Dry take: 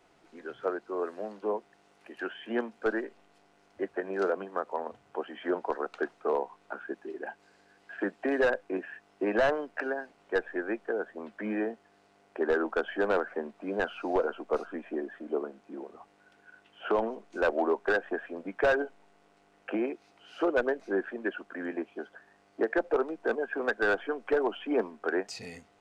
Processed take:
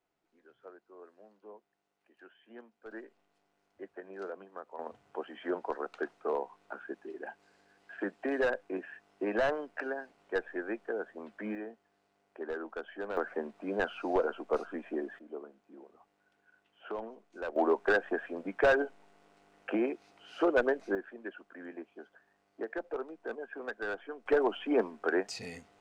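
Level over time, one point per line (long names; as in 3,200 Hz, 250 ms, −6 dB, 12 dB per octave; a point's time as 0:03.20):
−20 dB
from 0:02.91 −12.5 dB
from 0:04.79 −4 dB
from 0:11.55 −11 dB
from 0:13.17 −1.5 dB
from 0:15.19 −11.5 dB
from 0:17.56 0 dB
from 0:20.95 −10 dB
from 0:24.26 0 dB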